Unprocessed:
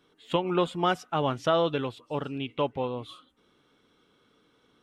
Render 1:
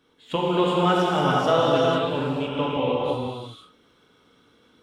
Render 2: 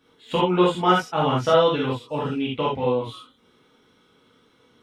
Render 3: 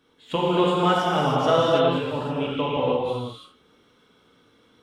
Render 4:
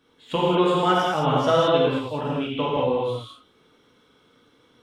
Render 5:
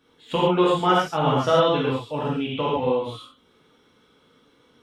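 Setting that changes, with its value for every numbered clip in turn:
gated-style reverb, gate: 530 ms, 100 ms, 360 ms, 240 ms, 160 ms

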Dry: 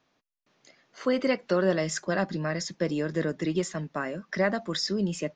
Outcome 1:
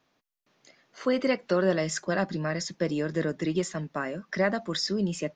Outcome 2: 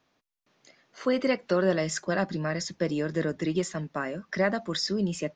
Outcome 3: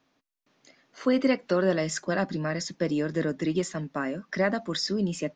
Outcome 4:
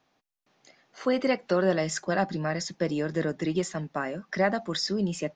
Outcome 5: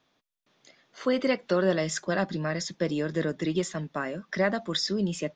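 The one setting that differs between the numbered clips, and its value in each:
peaking EQ, frequency: 13 kHz, 80 Hz, 270 Hz, 780 Hz, 3.5 kHz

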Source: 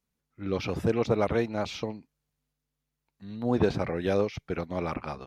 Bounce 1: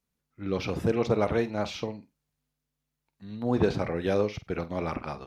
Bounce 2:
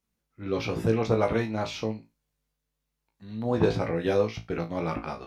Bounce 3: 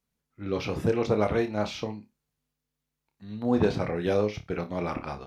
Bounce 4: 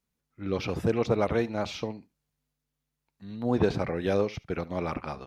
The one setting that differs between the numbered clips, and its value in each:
flutter echo, walls apart: 8.2 m, 3.1 m, 4.9 m, 12.4 m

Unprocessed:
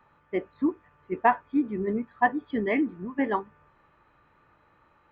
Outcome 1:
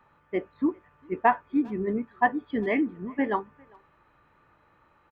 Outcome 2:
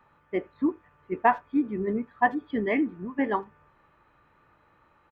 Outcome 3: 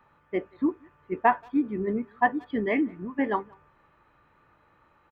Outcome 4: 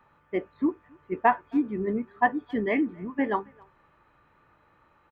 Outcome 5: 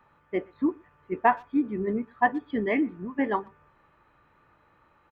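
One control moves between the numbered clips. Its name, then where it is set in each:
speakerphone echo, time: 400 ms, 80 ms, 180 ms, 270 ms, 120 ms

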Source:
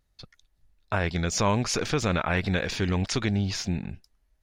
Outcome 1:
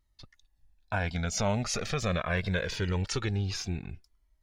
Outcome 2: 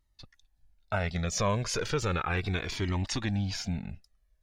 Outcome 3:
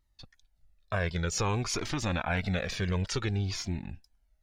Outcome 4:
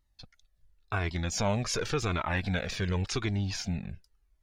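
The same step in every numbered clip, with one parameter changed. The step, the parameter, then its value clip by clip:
Shepard-style flanger, rate: 0.23 Hz, 0.35 Hz, 0.54 Hz, 0.9 Hz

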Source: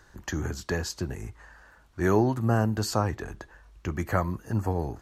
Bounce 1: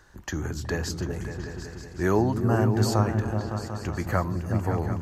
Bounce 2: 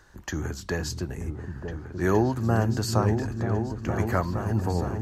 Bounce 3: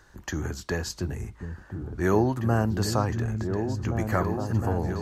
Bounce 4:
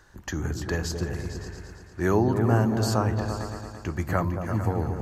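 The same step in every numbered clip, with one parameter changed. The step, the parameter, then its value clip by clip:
delay with an opening low-pass, time: 186 ms, 467 ms, 711 ms, 113 ms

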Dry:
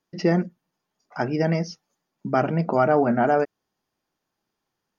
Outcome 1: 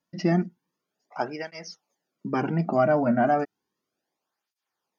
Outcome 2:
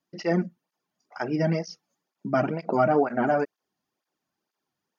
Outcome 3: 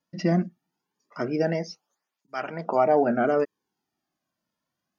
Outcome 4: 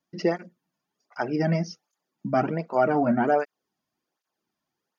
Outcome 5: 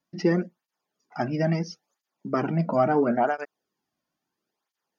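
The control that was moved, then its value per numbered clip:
cancelling through-zero flanger, nulls at: 0.33 Hz, 2.1 Hz, 0.22 Hz, 1.3 Hz, 0.74 Hz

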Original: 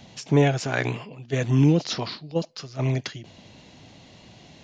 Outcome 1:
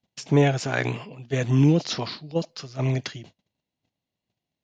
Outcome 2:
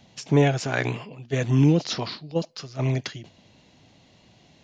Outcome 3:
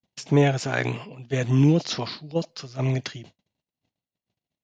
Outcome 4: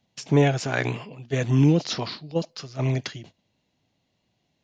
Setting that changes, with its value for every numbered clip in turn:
gate, range: -37 dB, -7 dB, -50 dB, -24 dB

